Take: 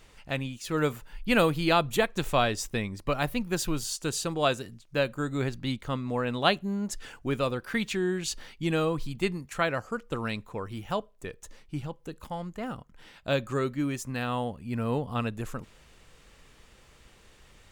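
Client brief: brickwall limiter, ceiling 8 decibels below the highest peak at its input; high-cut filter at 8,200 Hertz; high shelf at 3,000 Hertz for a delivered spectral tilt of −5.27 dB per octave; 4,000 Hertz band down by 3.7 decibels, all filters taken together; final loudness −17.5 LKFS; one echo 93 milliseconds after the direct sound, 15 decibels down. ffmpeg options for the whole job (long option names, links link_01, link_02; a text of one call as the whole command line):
ffmpeg -i in.wav -af "lowpass=8200,highshelf=frequency=3000:gain=3,equalizer=frequency=4000:width_type=o:gain=-7,alimiter=limit=-18dB:level=0:latency=1,aecho=1:1:93:0.178,volume=14dB" out.wav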